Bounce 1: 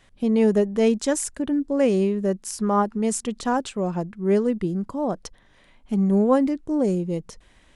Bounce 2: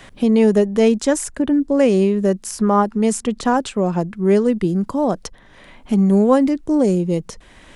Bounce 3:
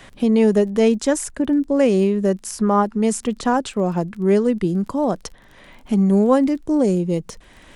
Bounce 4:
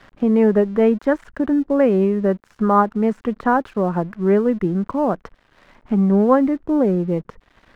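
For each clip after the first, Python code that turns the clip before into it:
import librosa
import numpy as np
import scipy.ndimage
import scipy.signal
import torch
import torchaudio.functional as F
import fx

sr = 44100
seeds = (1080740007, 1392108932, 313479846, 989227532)

y1 = fx.band_squash(x, sr, depth_pct=40)
y1 = F.gain(torch.from_numpy(y1), 5.5).numpy()
y2 = fx.dmg_crackle(y1, sr, seeds[0], per_s=20.0, level_db=-34.0)
y2 = F.gain(torch.from_numpy(y2), -1.5).numpy()
y3 = fx.lowpass_res(y2, sr, hz=1500.0, q=1.7)
y3 = np.sign(y3) * np.maximum(np.abs(y3) - 10.0 ** (-46.5 / 20.0), 0.0)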